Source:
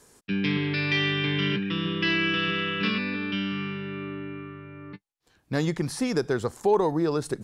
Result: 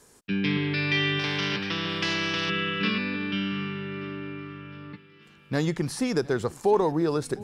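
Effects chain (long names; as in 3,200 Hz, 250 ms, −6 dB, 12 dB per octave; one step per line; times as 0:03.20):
feedback echo with a long and a short gap by turns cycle 1,181 ms, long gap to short 1.5 to 1, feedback 42%, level −22 dB
0:01.19–0:02.50: every bin compressed towards the loudest bin 2 to 1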